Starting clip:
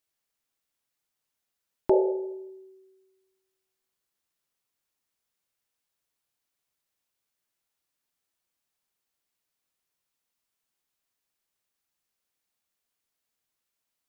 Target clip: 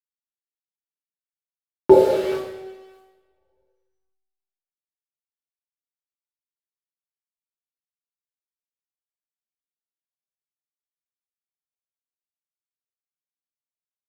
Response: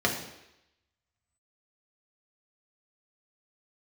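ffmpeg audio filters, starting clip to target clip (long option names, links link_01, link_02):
-filter_complex "[0:a]acrusher=bits=7:dc=4:mix=0:aa=0.000001[link_01];[1:a]atrim=start_sample=2205,asetrate=32634,aresample=44100[link_02];[link_01][link_02]afir=irnorm=-1:irlink=0,volume=-5dB"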